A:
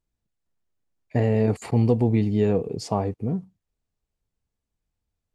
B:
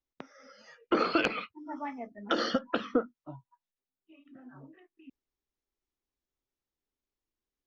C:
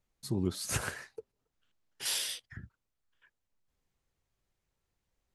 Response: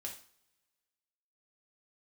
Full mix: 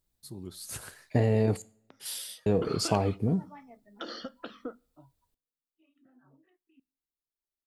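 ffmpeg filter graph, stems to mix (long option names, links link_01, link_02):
-filter_complex "[0:a]acompressor=threshold=-23dB:ratio=2,volume=-0.5dB,asplit=3[link_01][link_02][link_03];[link_01]atrim=end=1.62,asetpts=PTS-STARTPTS,afade=type=out:start_time=1.616:duration=0.004:curve=hsin[link_04];[link_02]atrim=start=1.62:end=2.46,asetpts=PTS-STARTPTS,volume=0[link_05];[link_03]atrim=start=2.46,asetpts=PTS-STARTPTS,afade=type=in:duration=0.004:curve=hsin[link_06];[link_04][link_05][link_06]concat=n=3:v=0:a=1,asplit=2[link_07][link_08];[link_08]volume=-10.5dB[link_09];[1:a]adelay=1700,volume=-12.5dB,asplit=2[link_10][link_11];[link_11]volume=-17dB[link_12];[2:a]volume=-11.5dB,asplit=2[link_13][link_14];[link_14]volume=-15dB[link_15];[3:a]atrim=start_sample=2205[link_16];[link_09][link_12][link_15]amix=inputs=3:normalize=0[link_17];[link_17][link_16]afir=irnorm=-1:irlink=0[link_18];[link_07][link_10][link_13][link_18]amix=inputs=4:normalize=0,aexciter=amount=2.2:drive=3.2:freq=3500"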